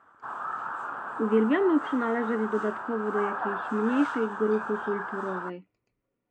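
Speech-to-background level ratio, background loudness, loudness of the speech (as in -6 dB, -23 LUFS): 6.0 dB, -34.5 LUFS, -28.5 LUFS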